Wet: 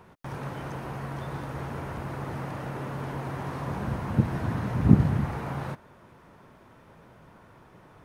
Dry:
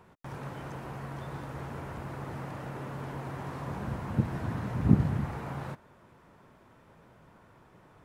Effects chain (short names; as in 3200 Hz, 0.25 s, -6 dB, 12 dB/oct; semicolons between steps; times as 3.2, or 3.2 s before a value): notch 7500 Hz, Q 13; gain +4.5 dB